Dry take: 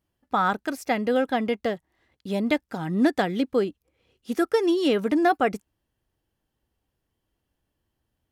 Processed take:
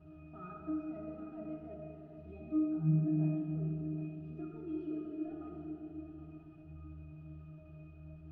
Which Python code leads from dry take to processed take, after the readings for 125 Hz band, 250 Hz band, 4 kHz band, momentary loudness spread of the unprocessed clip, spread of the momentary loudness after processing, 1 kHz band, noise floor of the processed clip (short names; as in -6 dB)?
+1.5 dB, -11.0 dB, under -40 dB, 9 LU, 20 LU, -28.5 dB, -54 dBFS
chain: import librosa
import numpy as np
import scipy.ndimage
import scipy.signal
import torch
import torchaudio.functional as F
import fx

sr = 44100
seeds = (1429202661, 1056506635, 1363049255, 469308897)

p1 = fx.delta_mod(x, sr, bps=32000, step_db=-37.0)
p2 = fx.dereverb_blind(p1, sr, rt60_s=2.0)
p3 = fx.high_shelf(p2, sr, hz=2200.0, db=-11.0)
p4 = p3 + 0.82 * np.pad(p3, (int(7.5 * sr / 1000.0), 0))[:len(p3)]
p5 = fx.wow_flutter(p4, sr, seeds[0], rate_hz=2.1, depth_cents=41.0)
p6 = fx.over_compress(p5, sr, threshold_db=-27.0, ratio=-1.0)
p7 = p5 + (p6 * librosa.db_to_amplitude(3.0))
p8 = fx.dynamic_eq(p7, sr, hz=760.0, q=0.91, threshold_db=-33.0, ratio=4.0, max_db=-6)
p9 = fx.octave_resonator(p8, sr, note='D#', decay_s=0.58)
p10 = p9 + fx.echo_single(p9, sr, ms=771, db=-11.0, dry=0)
p11 = fx.rev_schroeder(p10, sr, rt60_s=3.1, comb_ms=26, drr_db=-2.0)
y = p11 * librosa.db_to_amplitude(-4.0)